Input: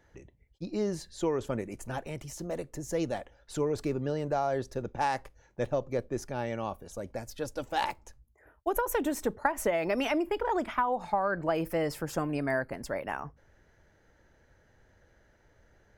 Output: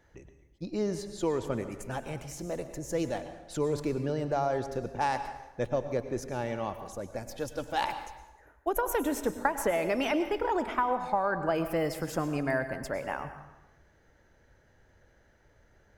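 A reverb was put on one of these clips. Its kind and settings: plate-style reverb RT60 1 s, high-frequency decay 0.8×, pre-delay 90 ms, DRR 9.5 dB

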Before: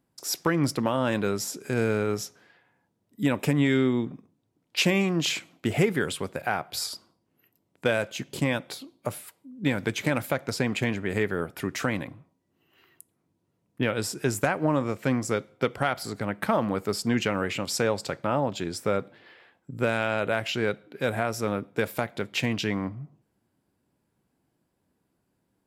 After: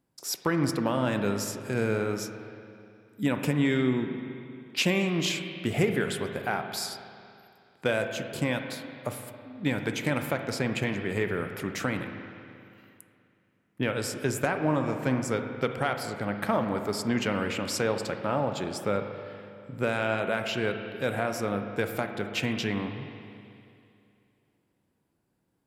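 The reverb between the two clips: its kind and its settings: spring tank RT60 2.6 s, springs 39/54 ms, chirp 70 ms, DRR 6 dB; trim -2.5 dB

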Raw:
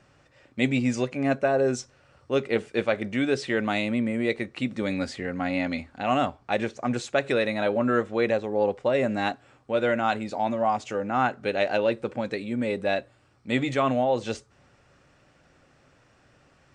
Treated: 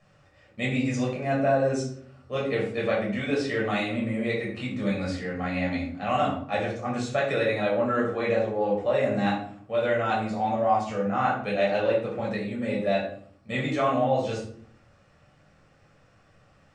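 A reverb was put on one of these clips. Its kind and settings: simulated room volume 720 m³, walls furnished, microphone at 6.1 m; trim -9 dB

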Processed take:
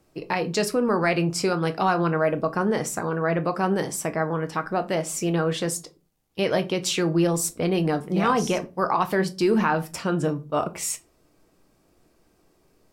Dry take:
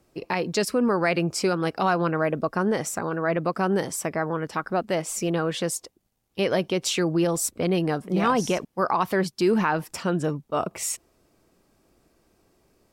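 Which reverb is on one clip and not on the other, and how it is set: simulated room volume 120 m³, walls furnished, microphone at 0.53 m

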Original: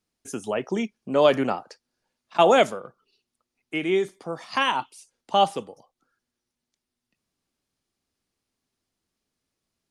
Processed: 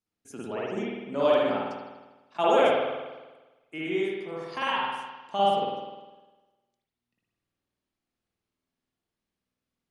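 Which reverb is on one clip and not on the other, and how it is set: spring tank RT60 1.2 s, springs 50 ms, chirp 30 ms, DRR -6.5 dB; trim -11 dB

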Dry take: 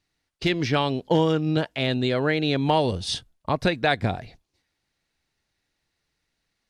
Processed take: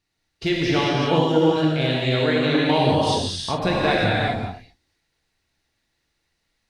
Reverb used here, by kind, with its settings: gated-style reverb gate 420 ms flat, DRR -5 dB; trim -2.5 dB

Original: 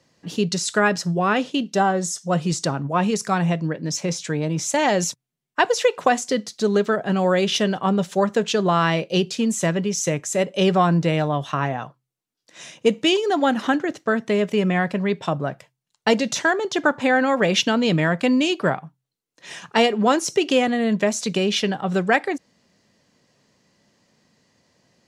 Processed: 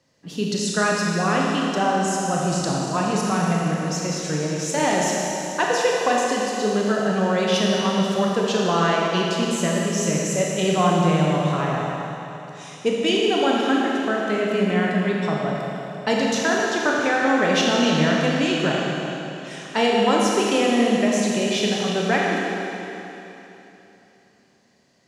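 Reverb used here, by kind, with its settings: Schroeder reverb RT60 3.2 s, combs from 26 ms, DRR -3 dB; trim -4.5 dB

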